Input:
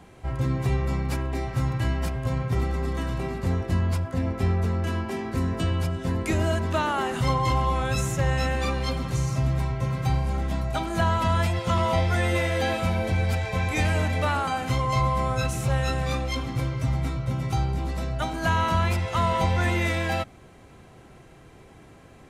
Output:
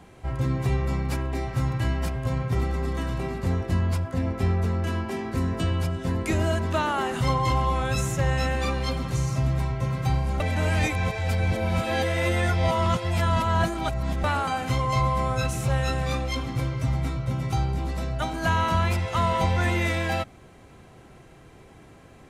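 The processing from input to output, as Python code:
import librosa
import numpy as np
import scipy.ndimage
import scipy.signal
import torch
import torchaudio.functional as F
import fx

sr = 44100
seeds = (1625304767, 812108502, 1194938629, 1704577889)

y = fx.edit(x, sr, fx.reverse_span(start_s=10.4, length_s=3.84), tone=tone)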